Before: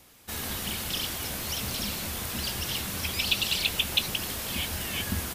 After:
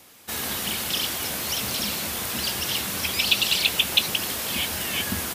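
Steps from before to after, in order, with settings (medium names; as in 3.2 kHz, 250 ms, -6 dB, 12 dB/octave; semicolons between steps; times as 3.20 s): high-pass 210 Hz 6 dB/octave; trim +5.5 dB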